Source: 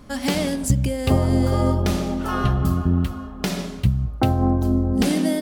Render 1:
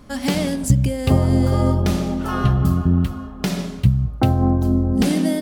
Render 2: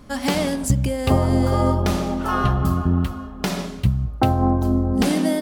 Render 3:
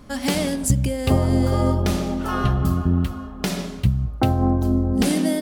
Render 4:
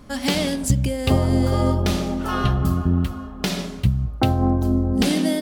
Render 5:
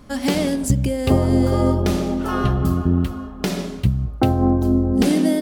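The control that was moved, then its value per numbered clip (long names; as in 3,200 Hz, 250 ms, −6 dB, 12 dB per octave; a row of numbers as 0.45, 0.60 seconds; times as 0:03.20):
dynamic equaliser, frequency: 140, 990, 9,900, 3,600, 360 Hertz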